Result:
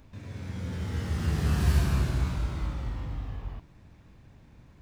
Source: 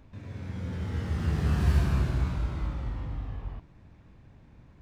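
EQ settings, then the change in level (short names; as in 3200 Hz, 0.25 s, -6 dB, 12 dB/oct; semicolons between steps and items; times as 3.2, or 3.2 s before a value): high shelf 4100 Hz +9 dB; 0.0 dB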